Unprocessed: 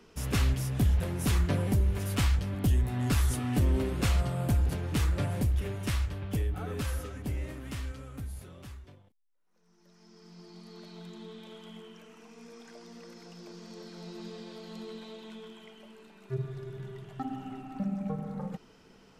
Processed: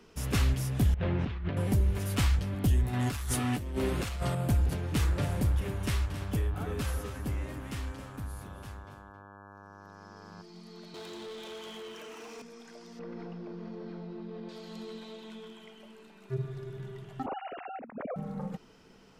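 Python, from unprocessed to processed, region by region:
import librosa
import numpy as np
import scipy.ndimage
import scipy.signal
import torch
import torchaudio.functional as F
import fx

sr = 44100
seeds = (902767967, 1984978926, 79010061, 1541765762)

y = fx.chain(x, sr, fx.lowpass(hz=3400.0, slope=24),
    fx.over_compress(threshold_db=-32.0, ratio=-1.0), at=(0.94, 1.57))
y = fx.chain(y, sr, fx.low_shelf(hz=410.0, db=-5.5),
    fx.leveller(passes=1),
    fx.over_compress(threshold_db=-30.0, ratio=-0.5), at=(2.93, 4.35))
y = fx.dmg_buzz(y, sr, base_hz=100.0, harmonics=17, level_db=-51.0, tilt_db=-1, odd_only=False, at=(5.02, 10.41), fade=0.02)
y = fx.echo_single(y, sr, ms=269, db=-11.5, at=(5.02, 10.41), fade=0.02)
y = fx.chain(y, sr, fx.highpass(hz=280.0, slope=24),
    fx.leveller(passes=3), at=(10.94, 12.42))
y = fx.chain(y, sr, fx.spacing_loss(db_at_10k=43),
    fx.env_flatten(amount_pct=100), at=(12.99, 14.49))
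y = fx.chain(y, sr, fx.sine_speech(),
    fx.peak_eq(hz=350.0, db=-11.5, octaves=0.3),
    fx.over_compress(threshold_db=-37.0, ratio=-0.5), at=(17.26, 18.16))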